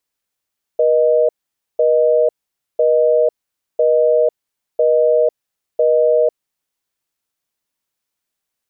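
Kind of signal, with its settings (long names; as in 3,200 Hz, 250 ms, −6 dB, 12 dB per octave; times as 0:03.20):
call progress tone busy tone, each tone −13 dBFS 5.98 s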